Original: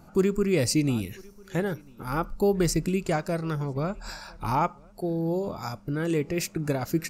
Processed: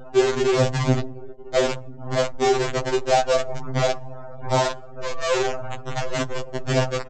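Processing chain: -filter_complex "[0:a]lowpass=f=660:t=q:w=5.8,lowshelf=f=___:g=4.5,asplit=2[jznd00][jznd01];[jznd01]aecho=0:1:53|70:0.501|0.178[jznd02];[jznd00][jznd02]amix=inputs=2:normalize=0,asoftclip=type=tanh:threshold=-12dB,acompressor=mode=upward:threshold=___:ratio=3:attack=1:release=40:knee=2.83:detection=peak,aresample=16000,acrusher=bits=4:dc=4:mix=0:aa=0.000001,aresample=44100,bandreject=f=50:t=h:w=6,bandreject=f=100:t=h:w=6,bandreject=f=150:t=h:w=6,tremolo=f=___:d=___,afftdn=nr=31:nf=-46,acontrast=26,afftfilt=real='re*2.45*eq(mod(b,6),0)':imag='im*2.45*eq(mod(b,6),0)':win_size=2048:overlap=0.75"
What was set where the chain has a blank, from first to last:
290, -26dB, 170, 0.889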